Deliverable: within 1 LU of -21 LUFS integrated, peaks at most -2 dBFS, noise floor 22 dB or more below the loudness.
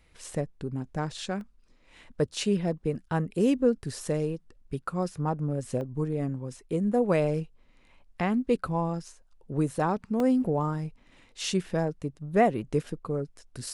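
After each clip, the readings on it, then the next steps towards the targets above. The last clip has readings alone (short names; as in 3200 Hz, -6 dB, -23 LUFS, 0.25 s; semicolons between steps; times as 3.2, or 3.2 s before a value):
dropouts 3; longest dropout 1.4 ms; loudness -29.5 LUFS; peak -9.5 dBFS; loudness target -21.0 LUFS
-> interpolate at 1.41/5.81/10.2, 1.4 ms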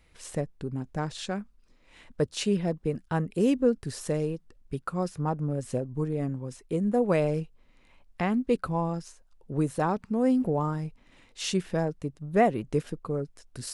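dropouts 0; loudness -29.5 LUFS; peak -9.5 dBFS; loudness target -21.0 LUFS
-> gain +8.5 dB; limiter -2 dBFS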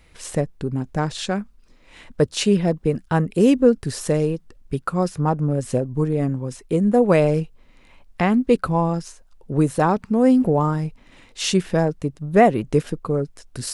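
loudness -21.0 LUFS; peak -2.0 dBFS; noise floor -53 dBFS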